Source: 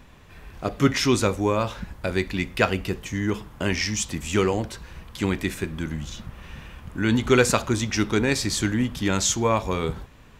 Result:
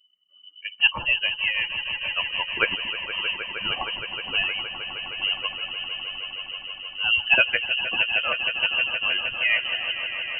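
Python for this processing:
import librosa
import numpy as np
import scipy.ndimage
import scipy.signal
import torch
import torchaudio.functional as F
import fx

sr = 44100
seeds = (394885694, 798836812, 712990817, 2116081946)

y = fx.bin_expand(x, sr, power=2.0)
y = fx.freq_invert(y, sr, carrier_hz=3000)
y = fx.echo_swell(y, sr, ms=156, loudest=5, wet_db=-13.0)
y = F.gain(torch.from_numpy(y), 2.0).numpy()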